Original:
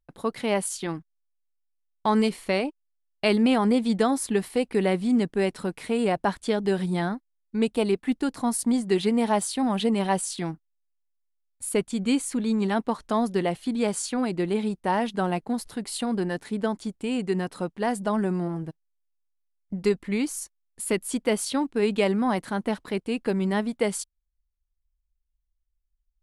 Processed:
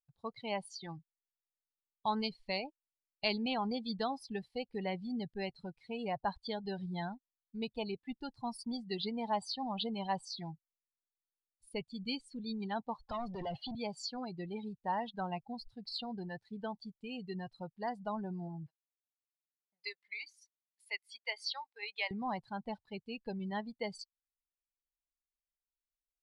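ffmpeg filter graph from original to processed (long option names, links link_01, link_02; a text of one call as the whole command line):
ffmpeg -i in.wav -filter_complex "[0:a]asettb=1/sr,asplit=3[link_01][link_02][link_03];[link_01]atrim=end=13.084[link_04];[link_02]atrim=start=13.08:end=13.75,asetpts=PTS-STARTPTS,afade=type=in:duration=0.004:curve=qsin,afade=type=out:start_time=0.666:duration=0.004:curve=qsin,highshelf=frequency=3200:gain=-8,acrossover=split=150|3000[link_05][link_06][link_07];[link_06]acompressor=threshold=-28dB:ratio=10:attack=3.2:release=140:knee=2.83:detection=peak[link_08];[link_05][link_08][link_07]amix=inputs=3:normalize=0,asplit=2[link_09][link_10];[link_10]highpass=frequency=720:poles=1,volume=27dB,asoftclip=type=tanh:threshold=-18dB[link_11];[link_09][link_11]amix=inputs=2:normalize=0,lowpass=frequency=2300:poles=1,volume=-6dB[link_12];[link_03]atrim=start=13.746[link_13];[link_04][link_12]acrossfade=duration=0.004:curve1=hsin:curve2=qsin[link_14];[link_14][link_13]acrossfade=duration=0.004:curve1=qsin:curve2=hsin,asettb=1/sr,asplit=3[link_15][link_16][link_17];[link_15]atrim=end=18.664[link_18];[link_16]atrim=start=18.66:end=22.11,asetpts=PTS-STARTPTS,afade=type=in:duration=0.004:curve=qsin,afade=type=out:start_time=3.446:duration=0.004:curve=qsin,highpass=850,equalizer=frequency=2100:width_type=o:width=0.31:gain=6.5[link_19];[link_17]atrim=start=22.106[link_20];[link_18][link_19]acrossfade=duration=0.004:curve1=hsin:curve2=qsin[link_21];[link_21][link_20]acrossfade=duration=0.004:curve1=qsin:curve2=hsin,firequalizer=gain_entry='entry(120,0);entry(180,-10);entry(300,-16);entry(820,-4);entry(1200,-9);entry(4700,4);entry(6800,-7);entry(10000,-13)':delay=0.05:min_phase=1,afftdn=noise_reduction=25:noise_floor=-35,volume=-3.5dB" out.wav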